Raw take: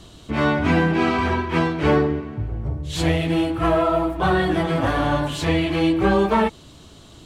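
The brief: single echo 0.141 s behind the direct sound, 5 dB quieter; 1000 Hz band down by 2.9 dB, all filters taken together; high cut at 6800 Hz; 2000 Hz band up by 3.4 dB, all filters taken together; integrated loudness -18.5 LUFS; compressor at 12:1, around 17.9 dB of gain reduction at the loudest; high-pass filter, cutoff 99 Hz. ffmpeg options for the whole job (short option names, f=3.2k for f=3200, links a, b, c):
-af "highpass=99,lowpass=6.8k,equalizer=f=1k:t=o:g=-5.5,equalizer=f=2k:t=o:g=6.5,acompressor=threshold=-33dB:ratio=12,aecho=1:1:141:0.562,volume=16.5dB"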